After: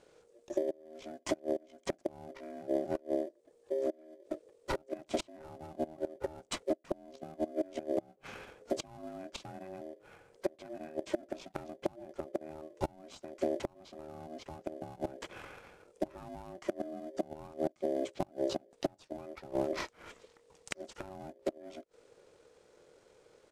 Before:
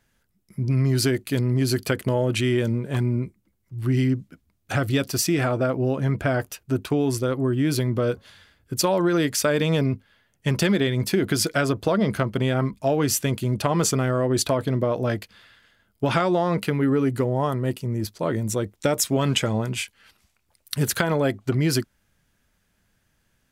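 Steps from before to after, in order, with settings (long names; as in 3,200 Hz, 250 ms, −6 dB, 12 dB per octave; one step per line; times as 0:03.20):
one scale factor per block 7 bits
gate with flip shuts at −14 dBFS, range −32 dB
in parallel at −5 dB: sample-rate reduction 2,300 Hz, jitter 0%
on the sum: pitch shifter −9 semitones
downward compressor 12 to 1, threshold −36 dBFS, peak gain reduction 21 dB
dynamic equaliser 140 Hz, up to +6 dB, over −53 dBFS, Q 1.5
ring modulation 470 Hz
level +6 dB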